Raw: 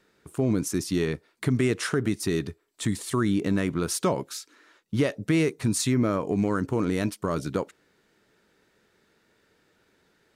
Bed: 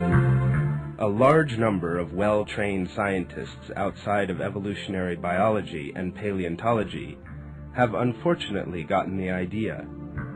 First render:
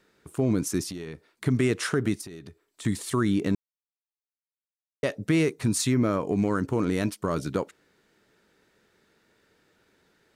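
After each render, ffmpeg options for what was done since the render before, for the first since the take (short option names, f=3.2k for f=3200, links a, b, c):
-filter_complex "[0:a]asettb=1/sr,asplit=3[a][b][c];[a]atrim=end=0.904[d];[b]atrim=start=0.9:end=1.46,asetpts=PTS-STARTPTS,afade=t=in:d=0.004:c=qsin,afade=t=out:st=0.556:d=0.004:c=qsin,acompressor=threshold=-34dB:ratio=5:attack=3.2:release=140:knee=1:detection=peak[e];[c]atrim=start=1.456[f];[d][e]acrossfade=d=0.004:c1=hsin:c2=qsin[g];[g][f]acrossfade=d=0.004:c1=qsin:c2=hsin,asettb=1/sr,asplit=3[h][i][j];[h]atrim=end=2.214[k];[i]atrim=start=2.21:end=2.85,asetpts=PTS-STARTPTS,afade=t=in:d=0.004:c=qsin,afade=t=out:st=0.636:d=0.004:c=qsin,acompressor=threshold=-39dB:ratio=6:attack=3.2:release=140:knee=1:detection=peak[l];[j]atrim=start=2.846[m];[k][l]acrossfade=d=0.004:c1=hsin:c2=qsin[n];[n][m]acrossfade=d=0.004:c1=qsin:c2=hsin,asplit=3[o][p][q];[o]atrim=end=3.55,asetpts=PTS-STARTPTS,afade=t=out:st=3.546:d=0.004:c=hsin[r];[p]atrim=start=3.55:end=5.03,asetpts=PTS-STARTPTS,volume=0[s];[q]atrim=start=5.03,asetpts=PTS-STARTPTS,afade=t=in:d=0.004:c=hsin[t];[r][s][t]concat=n=3:v=0:a=1"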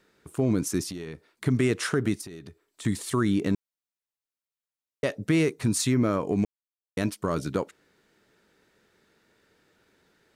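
-filter_complex "[0:a]asplit=3[a][b][c];[a]atrim=end=6.45,asetpts=PTS-STARTPTS,afade=t=out:st=6.446:d=0.004:c=hsin[d];[b]atrim=start=6.45:end=6.97,asetpts=PTS-STARTPTS,volume=0[e];[c]atrim=start=6.97,asetpts=PTS-STARTPTS,afade=t=in:d=0.004:c=hsin[f];[d][e][f]concat=n=3:v=0:a=1"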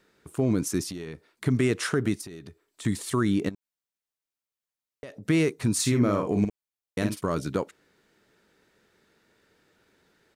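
-filter_complex "[0:a]asettb=1/sr,asplit=3[a][b][c];[a]atrim=end=3.494[d];[b]atrim=start=3.49:end=5.25,asetpts=PTS-STARTPTS,afade=t=in:d=0.004:c=qsin,afade=t=out:st=1.756:d=0.004:c=qsin,acompressor=threshold=-37dB:ratio=8:attack=3.2:release=140:knee=1:detection=peak[e];[c]atrim=start=5.246[f];[d][e]acrossfade=d=0.004:c1=hsin:c2=qsin[g];[g][f]acrossfade=d=0.004:c1=qsin:c2=hsin,asplit=3[h][i][j];[h]afade=t=out:st=5.78:d=0.02[k];[i]asplit=2[l][m];[m]adelay=49,volume=-6.5dB[n];[l][n]amix=inputs=2:normalize=0,afade=t=in:st=5.78:d=0.02,afade=t=out:st=7.23:d=0.02[o];[j]afade=t=in:st=7.23:d=0.02[p];[k][o][p]amix=inputs=3:normalize=0"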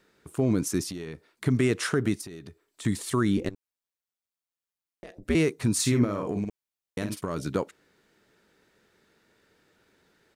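-filter_complex "[0:a]asettb=1/sr,asplit=3[a][b][c];[a]atrim=end=3.374[d];[b]atrim=start=3.37:end=5.35,asetpts=PTS-STARTPTS,afade=t=in:d=0.004:c=qsin,afade=t=out:st=1.976:d=0.004:c=qsin,aeval=exprs='val(0)*sin(2*PI*89*n/s)':c=same[e];[c]atrim=start=5.346[f];[d][e]acrossfade=d=0.004:c1=hsin:c2=qsin[g];[g][f]acrossfade=d=0.004:c1=qsin:c2=hsin,asettb=1/sr,asplit=3[h][i][j];[h]atrim=end=6.044[k];[i]atrim=start=6.04:end=7.41,asetpts=PTS-STARTPTS,afade=t=in:d=0.004:c=qsin,afade=t=out:st=1.366:d=0.004:c=qsin,acompressor=threshold=-25dB:ratio=6:attack=3.2:release=140:knee=1:detection=peak[l];[j]atrim=start=7.406[m];[k][l]acrossfade=d=0.004:c1=hsin:c2=qsin[n];[n][m]acrossfade=d=0.004:c1=qsin:c2=hsin"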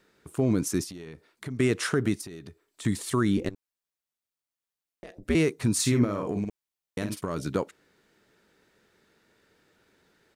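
-filter_complex "[0:a]asettb=1/sr,asplit=3[a][b][c];[a]atrim=end=0.844[d];[b]atrim=start=0.84:end=1.6,asetpts=PTS-STARTPTS,afade=t=in:d=0.004:c=qsin,afade=t=out:st=0.756:d=0.004:c=qsin,acompressor=threshold=-41dB:ratio=2:attack=3.2:release=140:knee=1:detection=peak[e];[c]atrim=start=1.596[f];[d][e]acrossfade=d=0.004:c1=hsin:c2=qsin[g];[g][f]acrossfade=d=0.004:c1=qsin:c2=hsin"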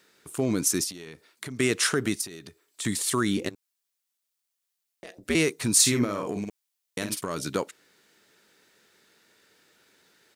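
-af "highpass=f=180:p=1,highshelf=f=2.3k:g=10"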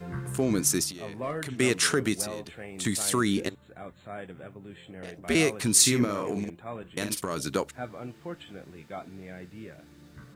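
-filter_complex "[1:a]volume=-15.5dB[a];[0:a][a]amix=inputs=2:normalize=0"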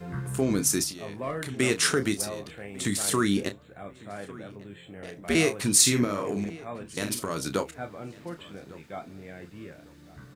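-filter_complex "[0:a]asplit=2[a][b];[b]adelay=30,volume=-10dB[c];[a][c]amix=inputs=2:normalize=0,asplit=2[d][e];[e]adelay=1151,lowpass=f=3.1k:p=1,volume=-20.5dB,asplit=2[f][g];[g]adelay=1151,lowpass=f=3.1k:p=1,volume=0.31[h];[d][f][h]amix=inputs=3:normalize=0"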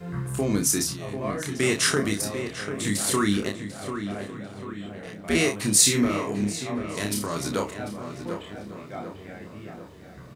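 -filter_complex "[0:a]asplit=2[a][b];[b]adelay=29,volume=-3dB[c];[a][c]amix=inputs=2:normalize=0,asplit=2[d][e];[e]adelay=744,lowpass=f=2.5k:p=1,volume=-8.5dB,asplit=2[f][g];[g]adelay=744,lowpass=f=2.5k:p=1,volume=0.54,asplit=2[h][i];[i]adelay=744,lowpass=f=2.5k:p=1,volume=0.54,asplit=2[j][k];[k]adelay=744,lowpass=f=2.5k:p=1,volume=0.54,asplit=2[l][m];[m]adelay=744,lowpass=f=2.5k:p=1,volume=0.54,asplit=2[n][o];[o]adelay=744,lowpass=f=2.5k:p=1,volume=0.54[p];[d][f][h][j][l][n][p]amix=inputs=7:normalize=0"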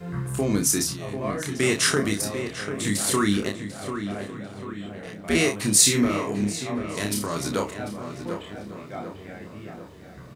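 -af "volume=1dB"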